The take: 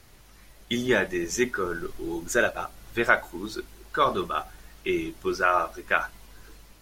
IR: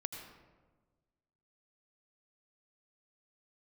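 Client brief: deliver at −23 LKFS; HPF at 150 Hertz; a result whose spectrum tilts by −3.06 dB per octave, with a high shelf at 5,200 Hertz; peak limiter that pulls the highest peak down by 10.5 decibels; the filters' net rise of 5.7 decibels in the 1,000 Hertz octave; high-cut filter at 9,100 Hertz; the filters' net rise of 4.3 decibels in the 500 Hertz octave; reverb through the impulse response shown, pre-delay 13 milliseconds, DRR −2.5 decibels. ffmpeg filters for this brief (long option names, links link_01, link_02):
-filter_complex "[0:a]highpass=150,lowpass=9100,equalizer=frequency=500:width_type=o:gain=4,equalizer=frequency=1000:width_type=o:gain=6.5,highshelf=frequency=5200:gain=5.5,alimiter=limit=-11.5dB:level=0:latency=1,asplit=2[link_01][link_02];[1:a]atrim=start_sample=2205,adelay=13[link_03];[link_02][link_03]afir=irnorm=-1:irlink=0,volume=3.5dB[link_04];[link_01][link_04]amix=inputs=2:normalize=0,volume=-1.5dB"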